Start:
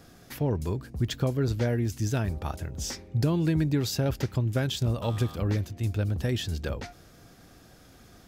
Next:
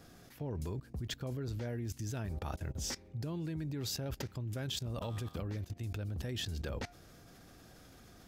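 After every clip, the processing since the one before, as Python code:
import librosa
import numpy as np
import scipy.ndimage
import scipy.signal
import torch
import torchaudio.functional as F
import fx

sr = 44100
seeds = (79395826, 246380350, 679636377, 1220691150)

y = fx.level_steps(x, sr, step_db=19)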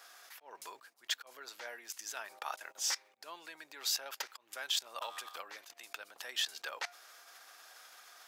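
y = fx.auto_swell(x, sr, attack_ms=144.0)
y = fx.ladder_highpass(y, sr, hz=730.0, resonance_pct=20)
y = y * 10.0 ** (11.0 / 20.0)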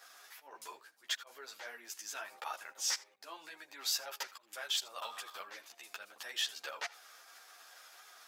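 y = x + 10.0 ** (-20.5 / 20.0) * np.pad(x, (int(80 * sr / 1000.0), 0))[:len(x)]
y = fx.ensemble(y, sr)
y = y * 10.0 ** (2.5 / 20.0)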